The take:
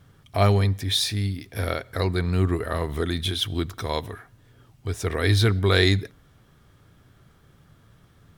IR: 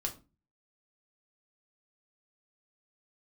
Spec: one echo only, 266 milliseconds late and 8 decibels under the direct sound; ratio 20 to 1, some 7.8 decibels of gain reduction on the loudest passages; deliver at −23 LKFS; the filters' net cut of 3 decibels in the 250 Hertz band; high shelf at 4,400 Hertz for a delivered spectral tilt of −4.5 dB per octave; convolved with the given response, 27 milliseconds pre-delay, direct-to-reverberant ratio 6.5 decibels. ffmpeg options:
-filter_complex "[0:a]equalizer=frequency=250:width_type=o:gain=-4.5,highshelf=frequency=4400:gain=5.5,acompressor=threshold=-22dB:ratio=20,aecho=1:1:266:0.398,asplit=2[link_01][link_02];[1:a]atrim=start_sample=2205,adelay=27[link_03];[link_02][link_03]afir=irnorm=-1:irlink=0,volume=-8dB[link_04];[link_01][link_04]amix=inputs=2:normalize=0,volume=4dB"

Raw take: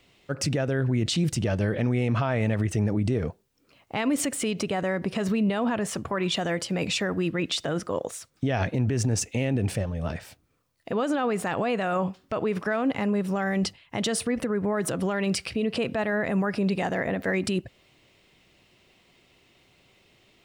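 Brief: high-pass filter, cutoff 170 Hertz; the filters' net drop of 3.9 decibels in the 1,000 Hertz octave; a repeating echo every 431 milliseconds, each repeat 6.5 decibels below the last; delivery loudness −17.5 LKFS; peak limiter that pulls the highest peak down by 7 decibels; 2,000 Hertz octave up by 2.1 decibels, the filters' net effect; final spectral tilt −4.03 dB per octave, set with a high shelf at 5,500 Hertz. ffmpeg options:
ffmpeg -i in.wav -af "highpass=170,equalizer=frequency=1000:width_type=o:gain=-7,equalizer=frequency=2000:width_type=o:gain=3.5,highshelf=frequency=5500:gain=9,alimiter=limit=-17.5dB:level=0:latency=1,aecho=1:1:431|862|1293|1724|2155|2586:0.473|0.222|0.105|0.0491|0.0231|0.0109,volume=10dB" out.wav

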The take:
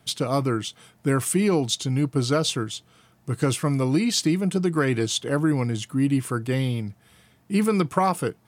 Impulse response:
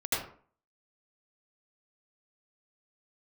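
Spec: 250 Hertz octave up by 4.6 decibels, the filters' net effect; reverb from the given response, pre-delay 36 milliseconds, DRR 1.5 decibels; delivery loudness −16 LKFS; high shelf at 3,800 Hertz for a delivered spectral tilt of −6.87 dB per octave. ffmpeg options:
-filter_complex "[0:a]equalizer=frequency=250:width_type=o:gain=6,highshelf=frequency=3800:gain=-6.5,asplit=2[link_01][link_02];[1:a]atrim=start_sample=2205,adelay=36[link_03];[link_02][link_03]afir=irnorm=-1:irlink=0,volume=-10dB[link_04];[link_01][link_04]amix=inputs=2:normalize=0,volume=3dB"

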